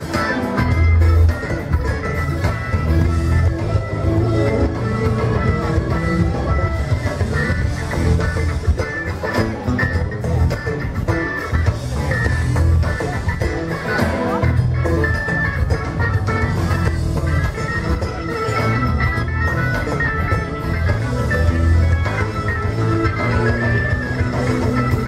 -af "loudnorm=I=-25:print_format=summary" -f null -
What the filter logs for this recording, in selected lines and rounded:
Input Integrated:    -18.8 LUFS
Input True Peak:      -4.2 dBTP
Input LRA:             1.8 LU
Input Threshold:     -28.8 LUFS